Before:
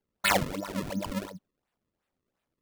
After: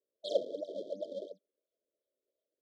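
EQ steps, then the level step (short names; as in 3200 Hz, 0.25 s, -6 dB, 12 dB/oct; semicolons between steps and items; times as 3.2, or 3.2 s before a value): HPF 440 Hz 24 dB/oct; brick-wall FIR band-stop 680–3100 Hz; tape spacing loss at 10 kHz 41 dB; +4.0 dB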